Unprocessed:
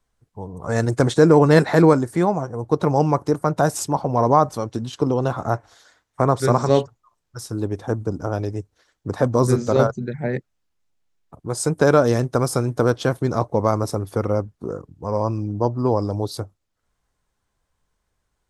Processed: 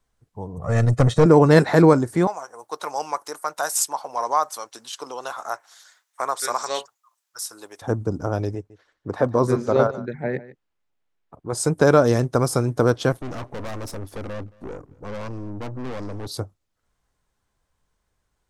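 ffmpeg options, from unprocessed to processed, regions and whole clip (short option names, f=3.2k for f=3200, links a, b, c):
-filter_complex "[0:a]asettb=1/sr,asplit=3[a][b][c];[a]atrim=end=0.574[d];[b]atrim=start=0.57:end=1.26,asetpts=PTS-STARTPTS,afade=t=in:d=0.004:c=qsin,afade=t=out:st=0.686:d=0.004:c=qsin,bass=f=250:g=5,treble=f=4k:g=-4,aecho=1:1:1.6:0.71,atrim=end_sample=30429,aeval=exprs='(tanh(2.24*val(0)+0.55)-tanh(0.55))/2.24':c=same[e];[c]atrim=start=1.256[f];[d][e]acrossfade=d=0.004:c1=hsin:c2=qsin[g];[g][f]acrossfade=d=0.004:c1=qsin:c2=hsin,asettb=1/sr,asplit=3[h][i][j];[h]atrim=end=2.274[k];[i]atrim=start=2.27:end=7.82,asetpts=PTS-STARTPTS,afade=t=in:d=0.004:c=qsin,afade=t=out:st=5.546:d=0.004:c=qsin,highpass=1k,highshelf=f=7k:g=11[l];[j]atrim=start=7.816[m];[k][l]acrossfade=d=0.004:c1=hsin:c2=qsin[n];[n][m]acrossfade=d=0.004:c1=qsin:c2=hsin,asettb=1/sr,asplit=3[o][p][q];[o]atrim=end=8.554[r];[p]atrim=start=8.55:end=11.53,asetpts=PTS-STARTPTS,afade=t=in:d=0.004:c=qsin,afade=t=out:st=2.976:d=0.004:c=qsin,bass=f=250:g=-6,treble=f=4k:g=-10,aecho=1:1:149:0.133,atrim=end_sample=131418[s];[q]atrim=start=11.526[t];[r][s]acrossfade=d=0.004:c1=hsin:c2=qsin[u];[u][t]acrossfade=d=0.004:c1=qsin:c2=hsin,asettb=1/sr,asplit=3[v][w][x];[v]atrim=end=13.124[y];[w]atrim=start=13.12:end=16.27,asetpts=PTS-STARTPTS,afade=t=in:d=0.004:c=qsin,afade=t=out:st=3.146:d=0.004:c=qsin,equalizer=f=280:t=o:w=0.27:g=5.5,aeval=exprs='(tanh(31.6*val(0)+0.6)-tanh(0.6))/31.6':c=same,aecho=1:1:223:0.0631,atrim=end_sample=138915[z];[x]atrim=start=16.266[aa];[y][z]acrossfade=d=0.004:c1=hsin:c2=qsin[ab];[ab][aa]acrossfade=d=0.004:c1=qsin:c2=hsin"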